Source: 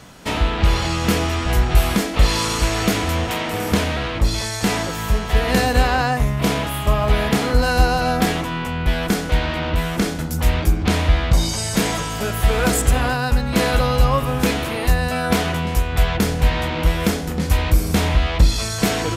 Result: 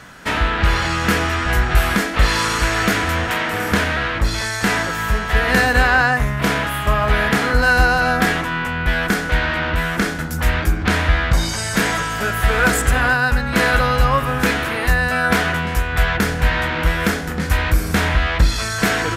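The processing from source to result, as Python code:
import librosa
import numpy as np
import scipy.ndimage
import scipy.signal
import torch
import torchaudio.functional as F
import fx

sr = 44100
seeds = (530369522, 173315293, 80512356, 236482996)

y = fx.peak_eq(x, sr, hz=1600.0, db=11.5, octaves=0.9)
y = y * 10.0 ** (-1.0 / 20.0)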